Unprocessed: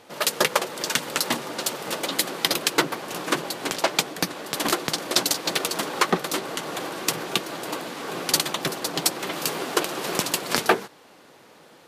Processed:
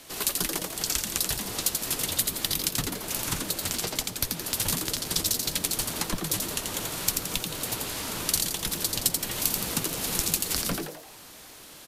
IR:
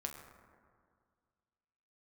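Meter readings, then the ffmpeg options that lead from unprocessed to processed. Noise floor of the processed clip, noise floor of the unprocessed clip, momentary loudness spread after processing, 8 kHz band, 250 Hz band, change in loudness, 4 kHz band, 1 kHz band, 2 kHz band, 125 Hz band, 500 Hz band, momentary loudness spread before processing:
-47 dBFS, -52 dBFS, 5 LU, +1.5 dB, -5.0 dB, -2.0 dB, -4.0 dB, -11.0 dB, -8.5 dB, +2.0 dB, -10.5 dB, 7 LU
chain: -filter_complex "[0:a]acrossover=split=370[s0][s1];[s1]acompressor=threshold=0.0158:ratio=4[s2];[s0][s2]amix=inputs=2:normalize=0,afreqshift=-190,crystalizer=i=5:c=0,asplit=2[s3][s4];[s4]asplit=6[s5][s6][s7][s8][s9][s10];[s5]adelay=85,afreqshift=150,volume=0.631[s11];[s6]adelay=170,afreqshift=300,volume=0.295[s12];[s7]adelay=255,afreqshift=450,volume=0.14[s13];[s8]adelay=340,afreqshift=600,volume=0.0653[s14];[s9]adelay=425,afreqshift=750,volume=0.0309[s15];[s10]adelay=510,afreqshift=900,volume=0.0145[s16];[s11][s12][s13][s14][s15][s16]amix=inputs=6:normalize=0[s17];[s3][s17]amix=inputs=2:normalize=0,volume=0.668"

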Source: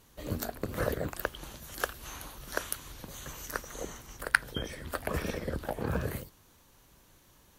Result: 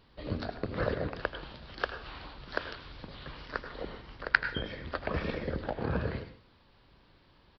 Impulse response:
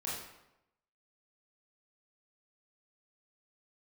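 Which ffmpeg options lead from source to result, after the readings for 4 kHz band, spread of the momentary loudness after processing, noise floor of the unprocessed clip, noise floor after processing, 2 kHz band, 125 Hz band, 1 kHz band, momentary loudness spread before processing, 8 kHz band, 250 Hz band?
0.0 dB, 16 LU, -62 dBFS, -63 dBFS, +0.5 dB, +0.5 dB, +0.5 dB, 14 LU, under -30 dB, +0.5 dB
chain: -filter_complex "[0:a]aresample=11025,aresample=44100,asplit=2[s0][s1];[1:a]atrim=start_sample=2205,asetrate=88200,aresample=44100,adelay=81[s2];[s1][s2]afir=irnorm=-1:irlink=0,volume=0.473[s3];[s0][s3]amix=inputs=2:normalize=0"

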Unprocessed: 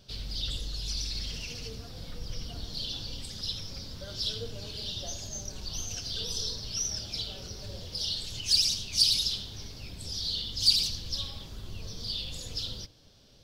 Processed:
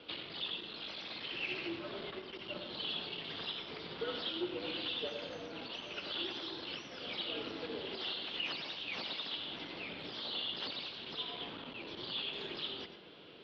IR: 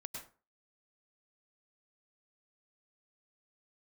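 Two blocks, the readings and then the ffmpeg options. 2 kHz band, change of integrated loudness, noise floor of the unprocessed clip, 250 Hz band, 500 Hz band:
+5.5 dB, -9.0 dB, -46 dBFS, +1.5 dB, +4.0 dB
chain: -filter_complex "[0:a]acompressor=threshold=0.0112:ratio=4,aeval=exprs='clip(val(0),-1,0.00891)':c=same,asplit=2[s0][s1];[1:a]atrim=start_sample=2205,asetrate=48510,aresample=44100[s2];[s1][s2]afir=irnorm=-1:irlink=0,volume=1.19[s3];[s0][s3]amix=inputs=2:normalize=0,highpass=f=340:t=q:w=0.5412,highpass=f=340:t=q:w=1.307,lowpass=f=3400:t=q:w=0.5176,lowpass=f=3400:t=q:w=0.7071,lowpass=f=3400:t=q:w=1.932,afreqshift=-110,volume=2.11"

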